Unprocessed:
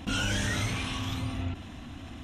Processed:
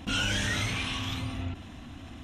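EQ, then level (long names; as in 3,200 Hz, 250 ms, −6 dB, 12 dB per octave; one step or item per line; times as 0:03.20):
dynamic equaliser 2,800 Hz, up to +5 dB, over −44 dBFS, Q 0.72
−1.5 dB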